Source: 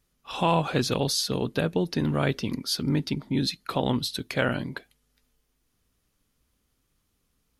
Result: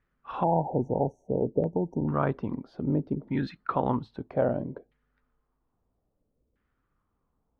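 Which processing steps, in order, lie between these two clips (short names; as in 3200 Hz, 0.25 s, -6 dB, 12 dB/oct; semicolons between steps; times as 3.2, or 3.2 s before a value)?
spectral delete 0.43–2.08, 950–5600 Hz; LFO low-pass saw down 0.61 Hz 460–1800 Hz; gain -3 dB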